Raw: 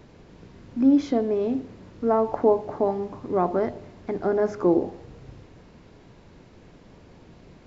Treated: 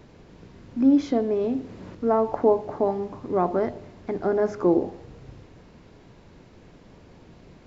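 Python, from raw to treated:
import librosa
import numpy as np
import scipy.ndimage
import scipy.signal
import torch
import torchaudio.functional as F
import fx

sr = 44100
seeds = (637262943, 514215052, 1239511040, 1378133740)

y = fx.band_squash(x, sr, depth_pct=70, at=(1.44, 1.95))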